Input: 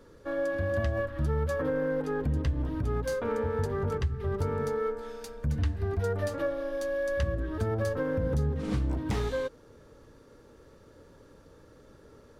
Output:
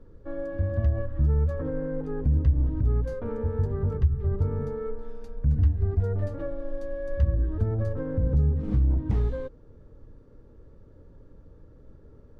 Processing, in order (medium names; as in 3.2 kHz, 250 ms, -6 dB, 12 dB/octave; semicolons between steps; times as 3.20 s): tilt EQ -4 dB/octave; trim -7.5 dB